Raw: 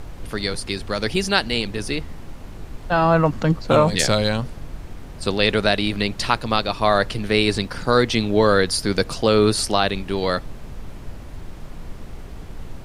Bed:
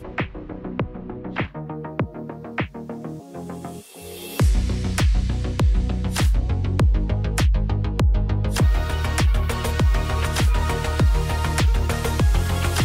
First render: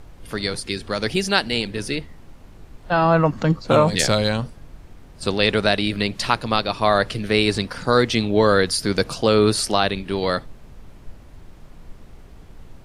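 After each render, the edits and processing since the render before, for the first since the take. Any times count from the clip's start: noise print and reduce 8 dB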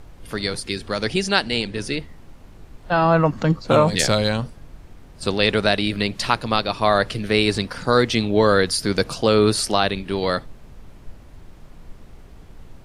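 1.03–1.99 LPF 10000 Hz 24 dB/oct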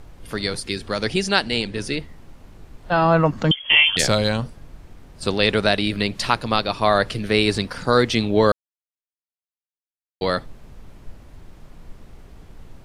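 3.51–3.97 inverted band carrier 3300 Hz; 8.52–10.21 mute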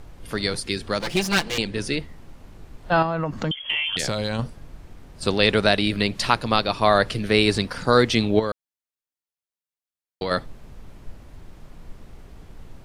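0.99–1.58 minimum comb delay 5.8 ms; 3.02–4.39 compressor, threshold -21 dBFS; 8.39–10.31 compressor 4:1, threshold -22 dBFS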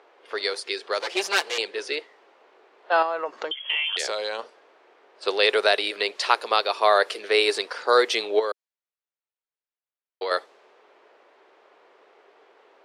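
Chebyshev high-pass 400 Hz, order 4; low-pass opened by the level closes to 3000 Hz, open at -19 dBFS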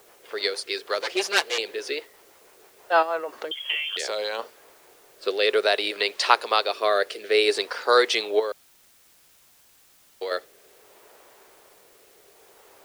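rotary speaker horn 6.3 Hz, later 0.6 Hz, at 3.01; in parallel at -9.5 dB: requantised 8-bit, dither triangular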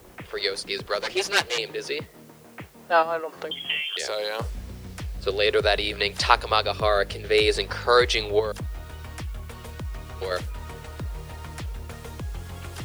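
add bed -15.5 dB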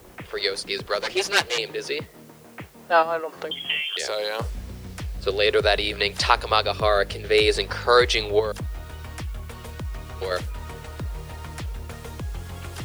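gain +1.5 dB; limiter -3 dBFS, peak gain reduction 3 dB

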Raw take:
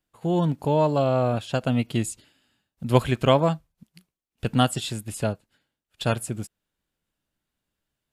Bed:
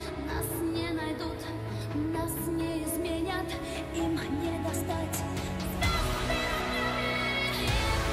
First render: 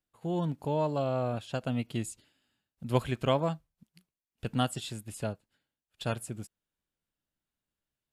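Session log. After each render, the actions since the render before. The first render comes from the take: gain -8.5 dB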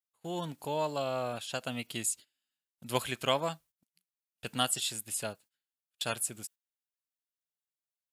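gate -53 dBFS, range -17 dB; tilt +3.5 dB/oct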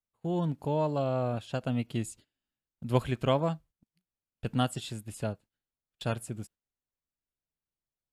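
tilt -4 dB/oct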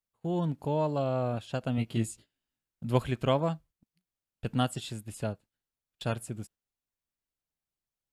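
1.76–2.91 doubler 18 ms -4 dB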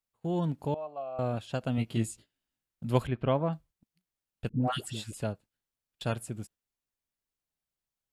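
0.74–1.19 vowel filter a; 3.07–3.53 air absorption 370 m; 4.49–5.13 dispersion highs, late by 0.145 s, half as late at 870 Hz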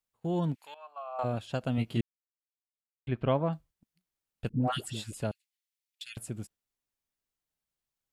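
0.54–1.23 resonant high-pass 2400 Hz -> 840 Hz, resonance Q 2.7; 2.01–3.07 mute; 5.31–6.17 elliptic high-pass 2000 Hz, stop band 50 dB

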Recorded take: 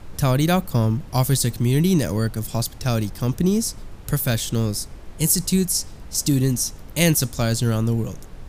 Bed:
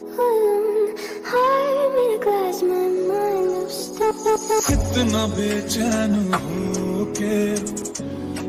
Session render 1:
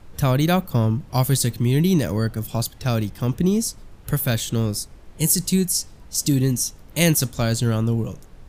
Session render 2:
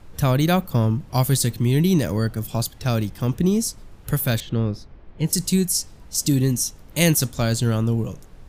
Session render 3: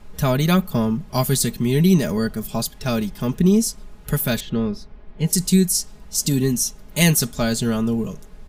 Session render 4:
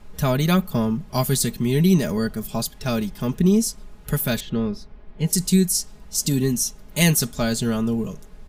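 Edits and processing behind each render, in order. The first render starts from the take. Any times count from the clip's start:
noise print and reduce 6 dB
4.4–5.33 air absorption 290 m
comb 4.8 ms, depth 71%
gain -1.5 dB

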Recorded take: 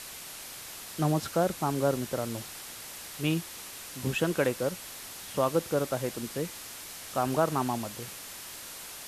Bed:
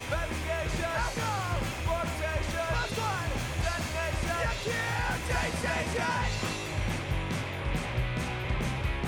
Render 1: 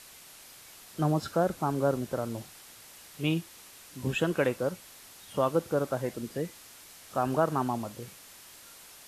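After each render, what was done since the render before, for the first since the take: noise print and reduce 8 dB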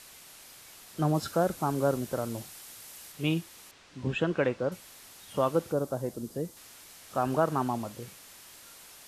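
1.14–3.12 high shelf 5800 Hz +6 dB; 3.71–4.72 air absorption 120 m; 5.72–6.57 bell 2200 Hz -12 dB 1.7 oct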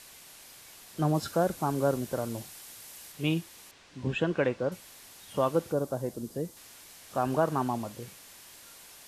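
notch 1300 Hz, Q 18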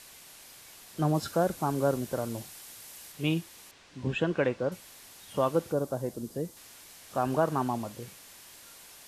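nothing audible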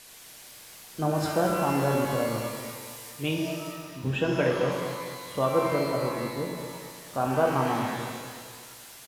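on a send: feedback echo 0.224 s, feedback 43%, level -10.5 dB; on the sum: shimmer reverb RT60 1.4 s, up +12 st, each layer -8 dB, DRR 0.5 dB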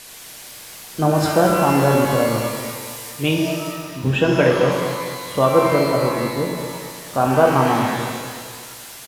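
gain +9.5 dB

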